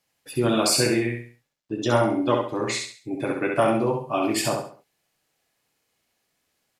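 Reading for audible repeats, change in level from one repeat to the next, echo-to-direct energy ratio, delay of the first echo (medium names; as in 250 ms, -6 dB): 4, -9.0 dB, -3.5 dB, 67 ms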